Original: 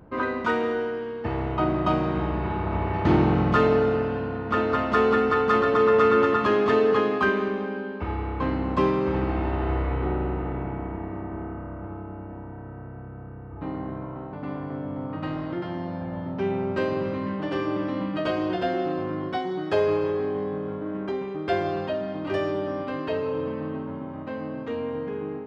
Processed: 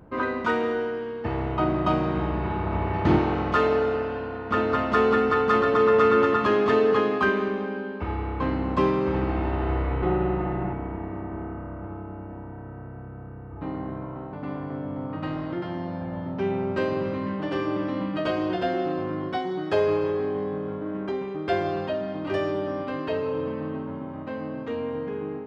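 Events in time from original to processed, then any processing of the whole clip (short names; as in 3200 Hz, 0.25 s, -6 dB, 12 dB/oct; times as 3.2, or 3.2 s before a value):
3.18–4.51 bell 150 Hz -11 dB 1.4 oct
10.02–10.73 comb 5.6 ms, depth 99%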